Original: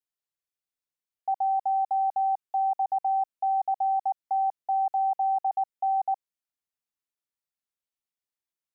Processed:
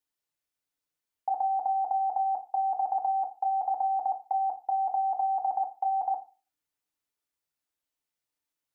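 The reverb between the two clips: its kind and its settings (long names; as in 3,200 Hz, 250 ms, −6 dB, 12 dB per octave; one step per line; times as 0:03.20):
feedback delay network reverb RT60 0.33 s, low-frequency decay 1×, high-frequency decay 0.55×, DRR 4 dB
level +3 dB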